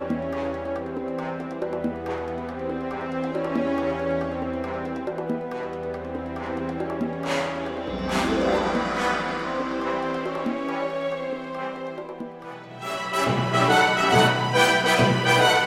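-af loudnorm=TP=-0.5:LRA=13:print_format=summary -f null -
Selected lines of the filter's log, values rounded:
Input Integrated:    -23.3 LUFS
Input True Peak:      -5.2 dBTP
Input LRA:             9.7 LU
Input Threshold:     -33.5 LUFS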